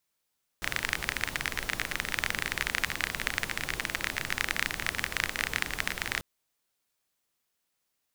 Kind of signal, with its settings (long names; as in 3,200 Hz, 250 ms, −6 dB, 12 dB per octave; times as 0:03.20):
rain-like ticks over hiss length 5.59 s, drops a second 27, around 1,900 Hz, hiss −6 dB